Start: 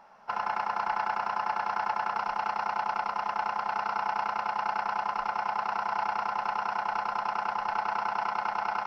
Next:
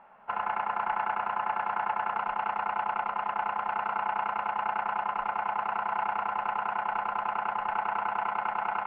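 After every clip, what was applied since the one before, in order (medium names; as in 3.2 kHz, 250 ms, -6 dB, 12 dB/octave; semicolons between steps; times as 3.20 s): steep low-pass 3 kHz 36 dB/octave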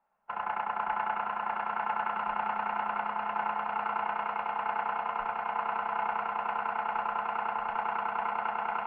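echo with a slow build-up 152 ms, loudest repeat 5, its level -13.5 dB; three bands expanded up and down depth 70%; trim -2 dB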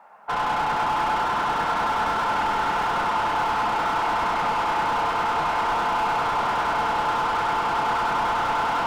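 overdrive pedal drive 37 dB, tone 1.4 kHz, clips at -16 dBFS; on a send at -7.5 dB: reverberation RT60 1.6 s, pre-delay 4 ms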